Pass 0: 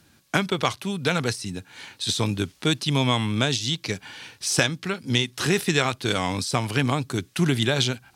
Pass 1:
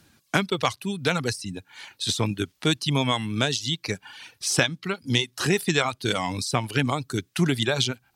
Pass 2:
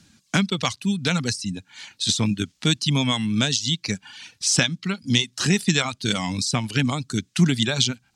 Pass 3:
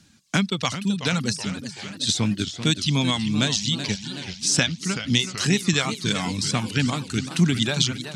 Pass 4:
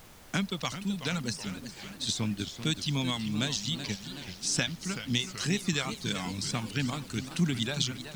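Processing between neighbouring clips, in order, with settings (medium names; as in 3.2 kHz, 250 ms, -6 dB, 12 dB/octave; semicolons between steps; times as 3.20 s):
reverb removal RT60 0.86 s
FFT filter 130 Hz 0 dB, 210 Hz +6 dB, 370 Hz -6 dB, 1 kHz -5 dB, 7.2 kHz +5 dB, 14 kHz -13 dB; trim +2 dB
modulated delay 382 ms, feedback 61%, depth 198 cents, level -11 dB; trim -1 dB
added noise pink -44 dBFS; trim -8.5 dB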